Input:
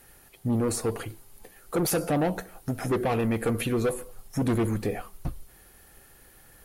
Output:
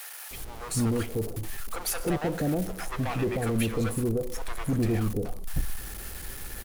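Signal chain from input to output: zero-crossing step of -32.5 dBFS; low shelf 70 Hz +9.5 dB; bands offset in time highs, lows 0.31 s, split 670 Hz; gain -3 dB

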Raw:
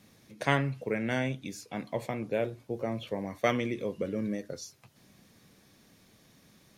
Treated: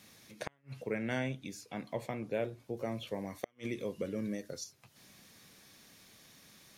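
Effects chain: flipped gate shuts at -16 dBFS, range -41 dB; 2.77–4.64 high shelf 3800 Hz +7.5 dB; mismatched tape noise reduction encoder only; gain -4.5 dB

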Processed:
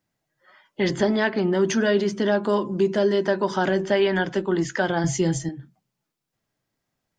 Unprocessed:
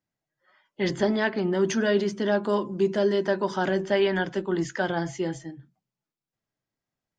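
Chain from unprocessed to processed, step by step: 5.04–5.49 tone controls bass +10 dB, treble +11 dB; compressor 1.5:1, threshold -36 dBFS, peak gain reduction 7 dB; gain +8.5 dB

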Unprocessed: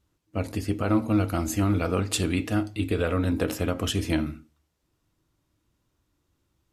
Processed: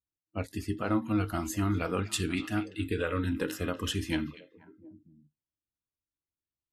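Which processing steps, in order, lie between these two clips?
spectral noise reduction 23 dB; delay with a stepping band-pass 0.241 s, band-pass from 2900 Hz, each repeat -1.4 oct, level -11 dB; dynamic EQ 1800 Hz, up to +4 dB, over -41 dBFS, Q 0.97; gain -5.5 dB

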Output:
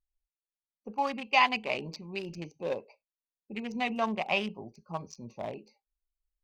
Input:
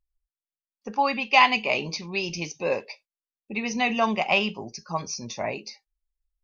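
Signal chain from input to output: Wiener smoothing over 25 samples; gain -6 dB

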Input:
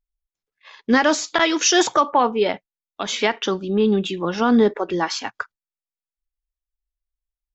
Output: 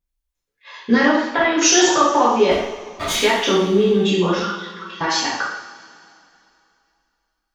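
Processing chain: 2.51–3.15 minimum comb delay 3.2 ms; compressor, threshold -17 dBFS, peak gain reduction 6 dB; 1.06–1.58 air absorption 400 m; 4.38–5.01 rippled Chebyshev high-pass 1000 Hz, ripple 9 dB; two-slope reverb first 0.73 s, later 2.8 s, from -18 dB, DRR -7.5 dB; gain -1 dB

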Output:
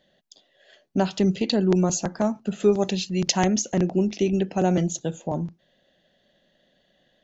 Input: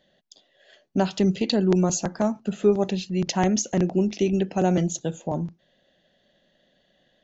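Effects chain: 2.6–3.45 high shelf 3300 Hz +9.5 dB

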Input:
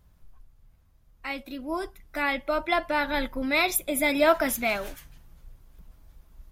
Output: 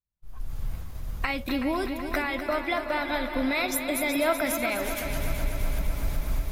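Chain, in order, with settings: recorder AGC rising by 56 dB/s; expander -28 dBFS; multi-head echo 0.125 s, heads second and third, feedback 70%, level -10 dB; gain -5 dB

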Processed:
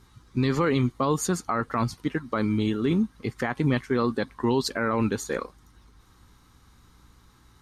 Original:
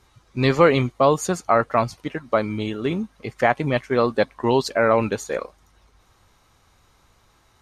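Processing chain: fifteen-band EQ 250 Hz +3 dB, 630 Hz -12 dB, 2500 Hz -6 dB, 6300 Hz -3 dB; limiter -17 dBFS, peak gain reduction 9.5 dB; hum 60 Hz, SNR 33 dB; gain +2 dB

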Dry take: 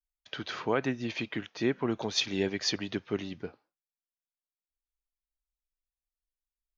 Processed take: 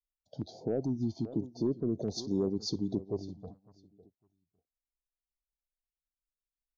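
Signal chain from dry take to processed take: elliptic band-stop 740–4300 Hz, stop band 40 dB; tilt shelf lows +7.5 dB, about 1400 Hz; soft clip -14.5 dBFS, distortion -19 dB; spectral noise reduction 12 dB; 3.06–3.47 bell 230 Hz -12.5 dB 1.5 oct; feedback echo 0.554 s, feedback 20%, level -20 dB; limiter -22 dBFS, peak gain reduction 6.5 dB; stepped notch 2.4 Hz 370–2500 Hz

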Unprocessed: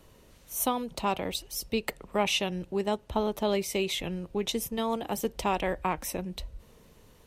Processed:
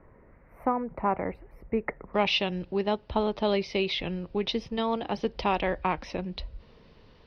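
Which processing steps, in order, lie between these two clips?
elliptic low-pass 2100 Hz, stop band 40 dB, from 2.13 s 5000 Hz; gain +2.5 dB

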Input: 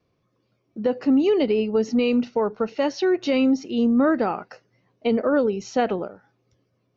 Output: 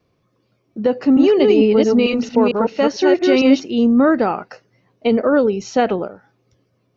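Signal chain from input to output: 0.94–3.64 reverse delay 0.225 s, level -2 dB; gain +5.5 dB

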